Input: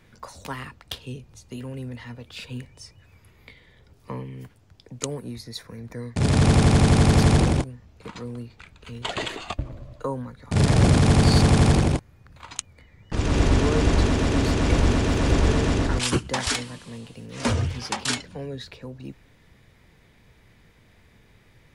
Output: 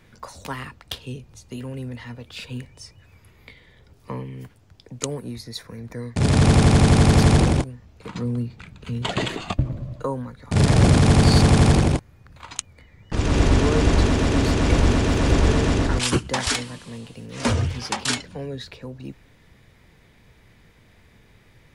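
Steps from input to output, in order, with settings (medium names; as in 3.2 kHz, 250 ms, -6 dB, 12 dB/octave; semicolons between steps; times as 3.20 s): 8.10–10.05 s: peaking EQ 160 Hz +11.5 dB 1.6 oct; trim +2 dB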